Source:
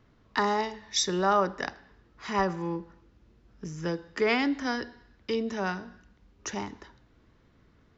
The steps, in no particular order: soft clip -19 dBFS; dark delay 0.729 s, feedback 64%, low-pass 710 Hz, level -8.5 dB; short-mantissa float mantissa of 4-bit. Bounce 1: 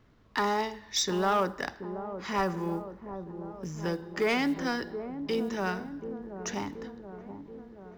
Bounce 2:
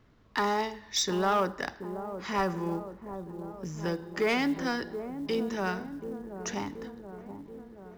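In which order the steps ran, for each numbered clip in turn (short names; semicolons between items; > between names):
soft clip > short-mantissa float > dark delay; soft clip > dark delay > short-mantissa float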